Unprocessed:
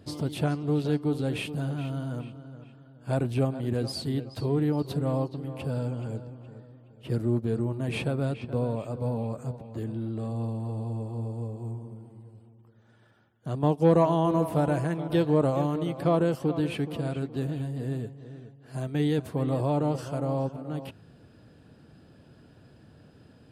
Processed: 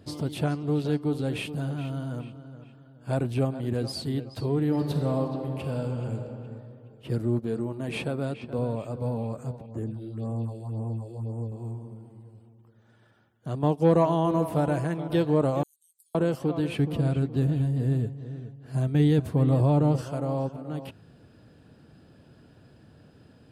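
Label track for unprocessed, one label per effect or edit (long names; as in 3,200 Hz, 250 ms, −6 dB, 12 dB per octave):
4.600000	6.300000	thrown reverb, RT60 2.3 s, DRR 4 dB
7.390000	8.590000	parametric band 97 Hz −9.5 dB
9.660000	11.520000	all-pass phaser stages 4, 1.9 Hz, lowest notch 160–4,400 Hz
15.630000	16.150000	inverse Chebyshev high-pass filter stop band from 1,500 Hz, stop band 80 dB
16.790000	20.020000	low-shelf EQ 190 Hz +11.5 dB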